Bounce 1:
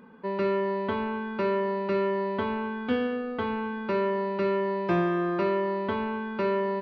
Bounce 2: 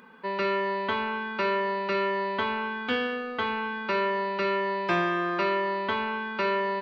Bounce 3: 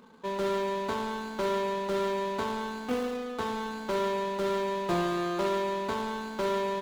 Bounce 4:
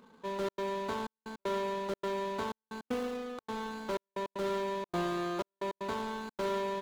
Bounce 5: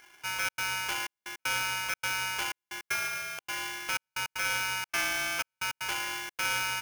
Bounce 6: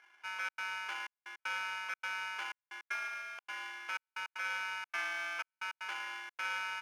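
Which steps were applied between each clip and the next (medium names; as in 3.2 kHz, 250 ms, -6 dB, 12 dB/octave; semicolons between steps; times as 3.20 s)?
tilt shelf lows -8 dB, about 780 Hz; trim +1.5 dB
median filter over 25 samples
trance gate "xxxxx.xxxxx..x." 155 bpm -60 dB; trim -4 dB
polarity switched at an audio rate 1.9 kHz; trim +2.5 dB
band-pass filter 1.4 kHz, Q 0.95; trim -4.5 dB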